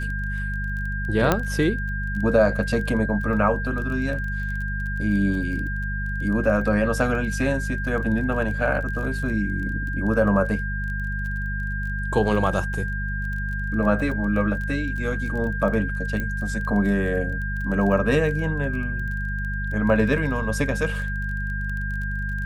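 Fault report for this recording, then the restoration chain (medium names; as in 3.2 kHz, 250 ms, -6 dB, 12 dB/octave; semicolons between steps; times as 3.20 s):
crackle 20 per s -31 dBFS
hum 50 Hz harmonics 4 -28 dBFS
whine 1.6 kHz -30 dBFS
1.32 s: pop -5 dBFS
16.20 s: pop -16 dBFS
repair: de-click; band-stop 1.6 kHz, Q 30; de-hum 50 Hz, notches 4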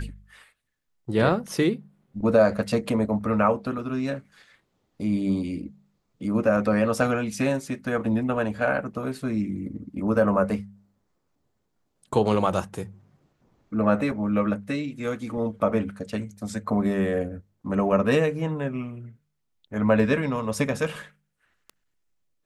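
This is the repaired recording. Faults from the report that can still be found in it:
nothing left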